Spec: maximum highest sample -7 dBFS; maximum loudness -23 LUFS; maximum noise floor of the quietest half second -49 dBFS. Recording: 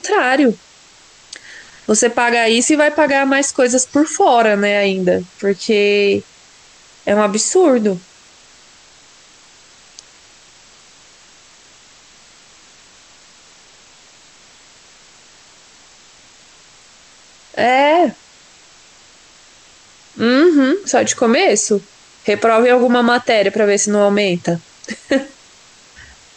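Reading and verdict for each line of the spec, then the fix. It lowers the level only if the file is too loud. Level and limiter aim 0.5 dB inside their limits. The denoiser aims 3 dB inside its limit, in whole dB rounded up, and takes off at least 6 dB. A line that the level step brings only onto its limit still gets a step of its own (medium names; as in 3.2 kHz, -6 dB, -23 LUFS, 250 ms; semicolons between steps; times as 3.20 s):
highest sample -3.5 dBFS: fail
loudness -14.0 LUFS: fail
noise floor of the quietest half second -46 dBFS: fail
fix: trim -9.5 dB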